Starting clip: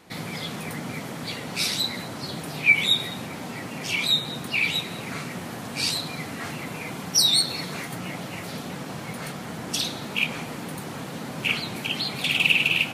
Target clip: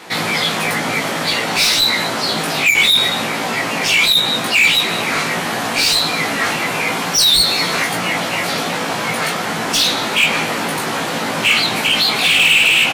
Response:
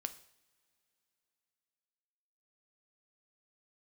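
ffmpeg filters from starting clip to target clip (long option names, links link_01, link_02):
-filter_complex "[0:a]asplit=2[link_01][link_02];[link_02]highpass=frequency=720:poles=1,volume=24dB,asoftclip=type=tanh:threshold=-6.5dB[link_03];[link_01][link_03]amix=inputs=2:normalize=0,lowpass=frequency=6100:poles=1,volume=-6dB,asplit=2[link_04][link_05];[link_05]adelay=18,volume=-2.5dB[link_06];[link_04][link_06]amix=inputs=2:normalize=0"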